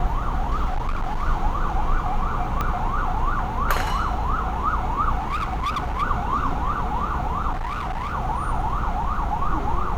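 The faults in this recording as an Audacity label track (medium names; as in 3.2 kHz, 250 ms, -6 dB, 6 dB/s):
0.650000	1.230000	clipped -20 dBFS
2.610000	2.610000	pop -11 dBFS
5.190000	6.030000	clipped -21.5 dBFS
7.520000	8.140000	clipped -24 dBFS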